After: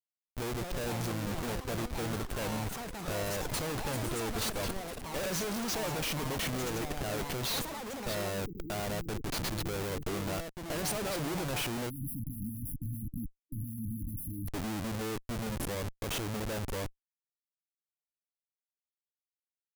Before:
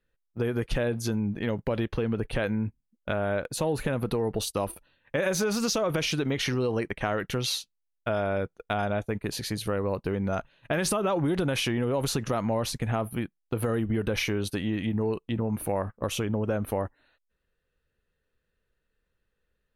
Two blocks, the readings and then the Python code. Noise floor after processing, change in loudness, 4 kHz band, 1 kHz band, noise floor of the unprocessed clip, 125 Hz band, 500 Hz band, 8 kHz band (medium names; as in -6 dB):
under -85 dBFS, -6.5 dB, -4.5 dB, -5.0 dB, -79 dBFS, -6.5 dB, -9.0 dB, -2.5 dB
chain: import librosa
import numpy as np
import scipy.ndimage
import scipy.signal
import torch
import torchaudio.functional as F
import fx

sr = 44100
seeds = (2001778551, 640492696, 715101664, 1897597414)

y = fx.schmitt(x, sr, flips_db=-33.0)
y = fx.high_shelf(y, sr, hz=6200.0, db=5.0)
y = fx.spec_erase(y, sr, start_s=11.9, length_s=2.58, low_hz=310.0, high_hz=10000.0)
y = fx.echo_pitch(y, sr, ms=363, semitones=7, count=3, db_per_echo=-6.0)
y = y * 10.0 ** (-5.5 / 20.0)